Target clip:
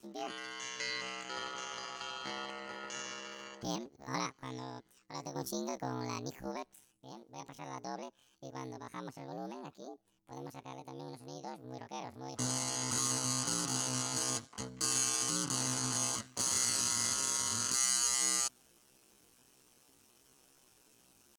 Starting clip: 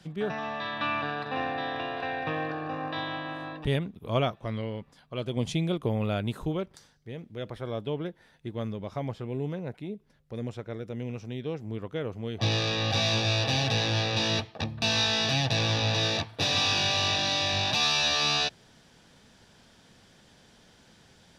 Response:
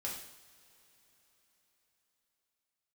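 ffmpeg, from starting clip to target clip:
-af "aeval=exprs='val(0)*sin(2*PI*37*n/s)':channel_layout=same,asetrate=76340,aresample=44100,atempo=0.577676,aemphasis=mode=production:type=cd,volume=-8dB"

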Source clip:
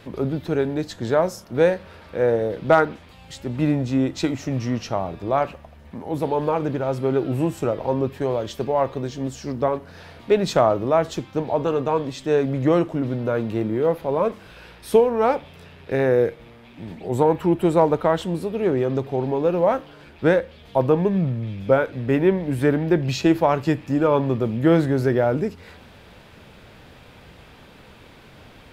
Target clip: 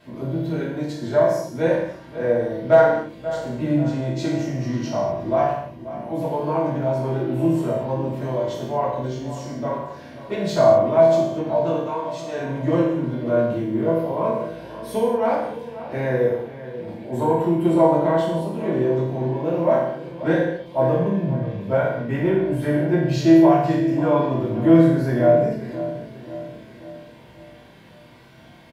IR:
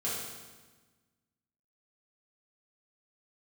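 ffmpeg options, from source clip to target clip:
-filter_complex "[0:a]asettb=1/sr,asplit=3[link_01][link_02][link_03];[link_01]atrim=end=11.754[link_04];[link_02]atrim=start=11.75:end=12.38,asetpts=PTS-STARTPTS,afade=type=in:duration=0.004:curve=qsin,afade=type=out:start_time=0.626:duration=0.004:curve=qsin,highpass=frequency=730:poles=1[link_05];[link_03]atrim=start=12.376[link_06];[link_04][link_05]acrossfade=duration=0.004:curve1=hsin:curve2=qsin[link_07];[link_07][link_06]acrossfade=duration=0.004:curve1=qsin:curve2=hsin,asplit=2[link_08][link_09];[link_09]adelay=536,lowpass=frequency=2900:poles=1,volume=-13.5dB,asplit=2[link_10][link_11];[link_11]adelay=536,lowpass=frequency=2900:poles=1,volume=0.51,asplit=2[link_12][link_13];[link_13]adelay=536,lowpass=frequency=2900:poles=1,volume=0.51,asplit=2[link_14][link_15];[link_15]adelay=536,lowpass=frequency=2900:poles=1,volume=0.51,asplit=2[link_16][link_17];[link_17]adelay=536,lowpass=frequency=2900:poles=1,volume=0.51[link_18];[link_08][link_10][link_12][link_14][link_16][link_18]amix=inputs=6:normalize=0[link_19];[1:a]atrim=start_sample=2205,afade=type=out:start_time=0.41:duration=0.01,atrim=end_sample=18522,asetrate=61740,aresample=44100[link_20];[link_19][link_20]afir=irnorm=-1:irlink=0,volume=-4.5dB"

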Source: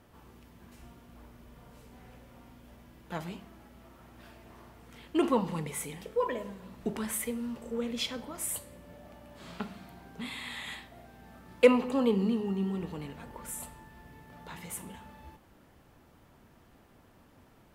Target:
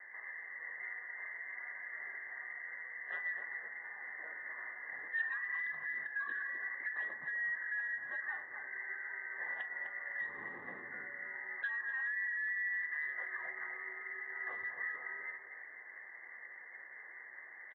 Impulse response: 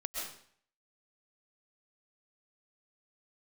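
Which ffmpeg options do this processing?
-filter_complex "[0:a]acompressor=threshold=-38dB:ratio=3,equalizer=frequency=160:width_type=o:width=0.67:gain=7,equalizer=frequency=400:width_type=o:width=0.67:gain=11,equalizer=frequency=1600:width_type=o:width=0.67:gain=8,lowpass=frequency=2100:width_type=q:width=0.5098,lowpass=frequency=2100:width_type=q:width=0.6013,lowpass=frequency=2100:width_type=q:width=0.9,lowpass=frequency=2100:width_type=q:width=2.563,afreqshift=-2500,bandreject=frequency=1700:width=6.5,afreqshift=-360,asoftclip=type=tanh:threshold=-24.5dB,aeval=exprs='0.501*(cos(1*acos(clip(val(0)/0.501,-1,1)))-cos(1*PI/2))+0.0282*(cos(7*acos(clip(val(0)/0.501,-1,1)))-cos(7*PI/2))':channel_layout=same,asplit=2[link_01][link_02];[link_02]adelay=253,lowpass=frequency=830:poles=1,volume=-7dB,asplit=2[link_03][link_04];[link_04]adelay=253,lowpass=frequency=830:poles=1,volume=0.45,asplit=2[link_05][link_06];[link_06]adelay=253,lowpass=frequency=830:poles=1,volume=0.45,asplit=2[link_07][link_08];[link_08]adelay=253,lowpass=frequency=830:poles=1,volume=0.45,asplit=2[link_09][link_10];[link_10]adelay=253,lowpass=frequency=830:poles=1,volume=0.45[link_11];[link_03][link_05][link_07][link_09][link_11]amix=inputs=5:normalize=0[link_12];[link_01][link_12]amix=inputs=2:normalize=0,acontrast=31,alimiter=level_in=10dB:limit=-24dB:level=0:latency=1:release=222,volume=-10dB,aderivative,volume=14.5dB" -ar 24000 -c:a aac -b:a 16k

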